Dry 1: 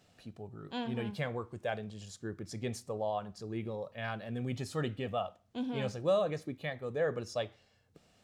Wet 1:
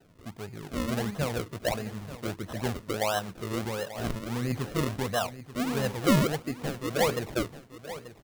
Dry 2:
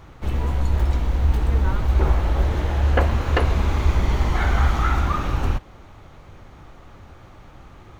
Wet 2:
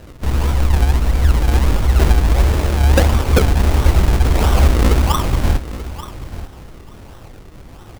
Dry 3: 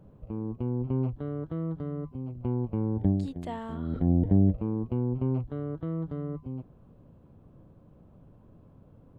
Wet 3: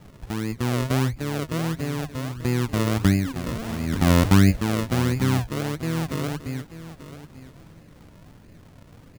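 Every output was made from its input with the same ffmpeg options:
-filter_complex "[0:a]acrusher=samples=38:mix=1:aa=0.000001:lfo=1:lforange=38:lforate=1.5,asplit=2[a][b];[b]aecho=0:1:886|1772:0.2|0.0319[c];[a][c]amix=inputs=2:normalize=0,volume=6dB"

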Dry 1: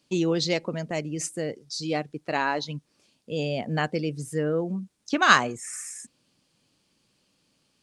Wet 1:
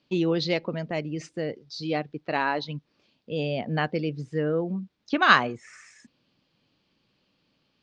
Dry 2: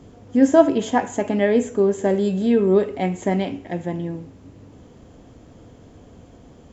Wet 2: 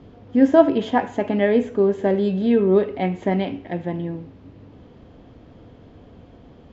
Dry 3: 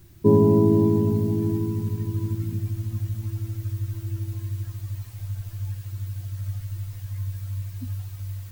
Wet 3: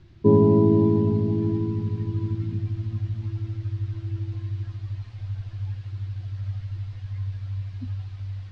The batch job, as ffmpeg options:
-af "lowpass=f=4.4k:w=0.5412,lowpass=f=4.4k:w=1.3066"

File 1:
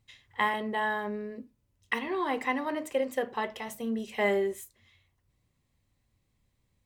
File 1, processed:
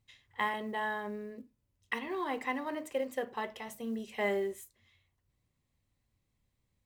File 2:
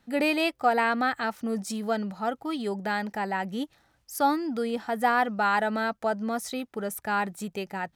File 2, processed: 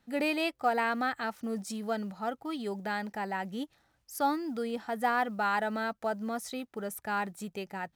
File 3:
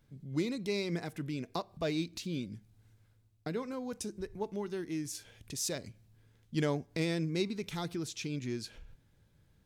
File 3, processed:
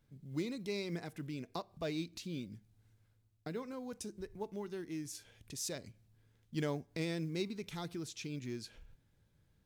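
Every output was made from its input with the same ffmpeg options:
-af "acrusher=bits=9:mode=log:mix=0:aa=0.000001,volume=-5dB"

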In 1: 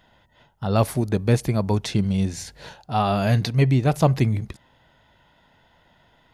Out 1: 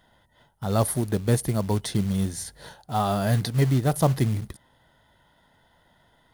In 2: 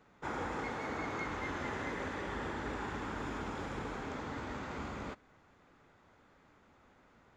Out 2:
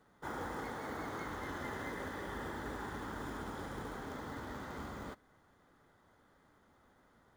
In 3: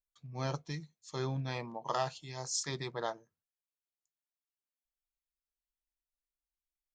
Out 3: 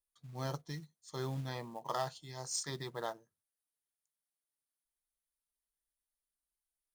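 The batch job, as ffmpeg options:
-af "superequalizer=12b=0.398:16b=3.55,acrusher=bits=5:mode=log:mix=0:aa=0.000001,volume=-3dB"

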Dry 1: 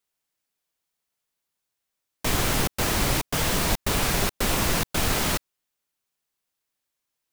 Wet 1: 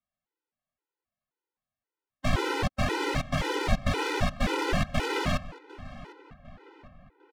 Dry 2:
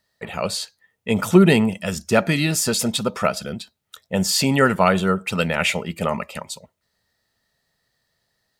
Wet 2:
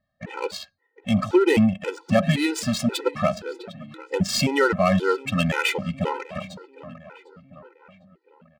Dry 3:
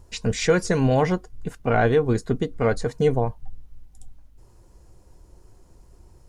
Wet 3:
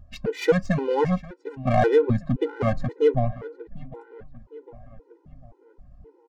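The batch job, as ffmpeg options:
-filter_complex "[0:a]adynamicsmooth=sensitivity=2:basefreq=1.8k,asplit=2[a][b];[b]adelay=752,lowpass=f=2.9k:p=1,volume=-17.5dB,asplit=2[c][d];[d]adelay=752,lowpass=f=2.9k:p=1,volume=0.52,asplit=2[e][f];[f]adelay=752,lowpass=f=2.9k:p=1,volume=0.52,asplit=2[g][h];[h]adelay=752,lowpass=f=2.9k:p=1,volume=0.52[i];[a][c][e][g][i]amix=inputs=5:normalize=0,alimiter=level_in=6.5dB:limit=-1dB:release=50:level=0:latency=1,afftfilt=real='re*gt(sin(2*PI*1.9*pts/sr)*(1-2*mod(floor(b*sr/1024/260),2)),0)':imag='im*gt(sin(2*PI*1.9*pts/sr)*(1-2*mod(floor(b*sr/1024/260),2)),0)':win_size=1024:overlap=0.75,volume=-4.5dB"

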